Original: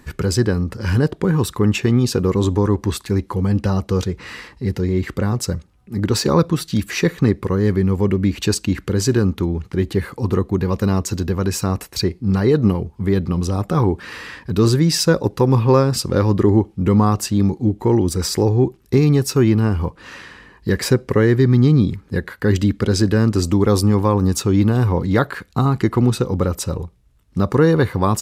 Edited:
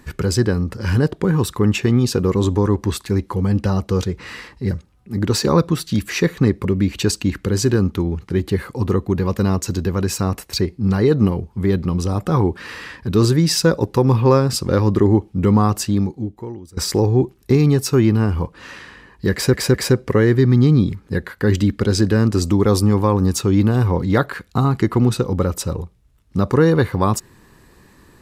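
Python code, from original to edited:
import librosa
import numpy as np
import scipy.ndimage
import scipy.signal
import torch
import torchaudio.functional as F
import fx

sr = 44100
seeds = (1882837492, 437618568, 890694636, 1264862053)

y = fx.edit(x, sr, fx.cut(start_s=4.71, length_s=0.81),
    fx.cut(start_s=7.46, length_s=0.62),
    fx.fade_out_to(start_s=17.32, length_s=0.88, curve='qua', floor_db=-22.0),
    fx.stutter(start_s=20.75, slice_s=0.21, count=3), tone=tone)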